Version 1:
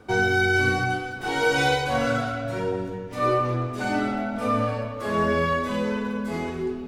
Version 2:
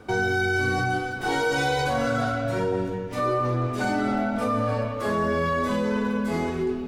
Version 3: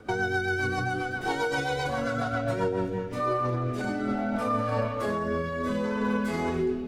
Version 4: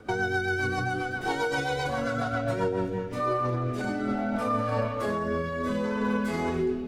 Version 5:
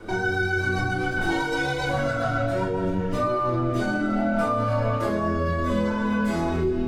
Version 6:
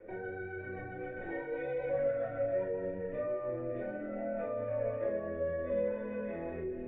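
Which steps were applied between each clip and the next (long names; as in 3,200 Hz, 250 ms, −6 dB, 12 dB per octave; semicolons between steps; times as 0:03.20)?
dynamic equaliser 2,600 Hz, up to −5 dB, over −43 dBFS, Q 1.9; in parallel at +1 dB: compressor whose output falls as the input rises −27 dBFS, ratio −1; on the sum: level −5 dB
parametric band 1,100 Hz +3.5 dB 1.5 octaves; brickwall limiter −17.5 dBFS, peak gain reduction 5 dB; rotating-speaker cabinet horn 7.5 Hz, later 0.65 Hz, at 0:02.52
no processing that can be heard
brickwall limiter −26.5 dBFS, peak gain reduction 10 dB; rectangular room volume 130 cubic metres, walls furnished, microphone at 2.8 metres; level +2.5 dB
formant resonators in series e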